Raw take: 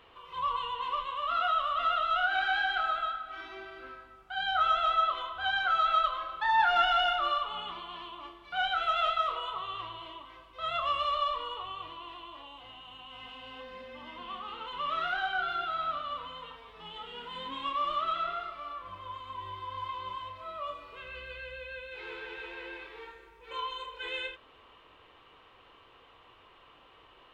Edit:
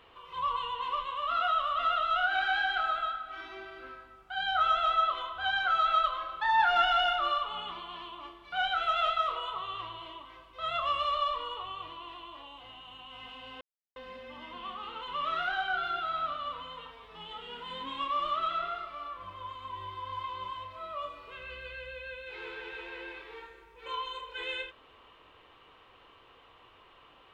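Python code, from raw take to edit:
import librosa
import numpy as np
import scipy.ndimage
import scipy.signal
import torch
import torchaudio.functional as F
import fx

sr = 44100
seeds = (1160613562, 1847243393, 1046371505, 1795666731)

y = fx.edit(x, sr, fx.insert_silence(at_s=13.61, length_s=0.35), tone=tone)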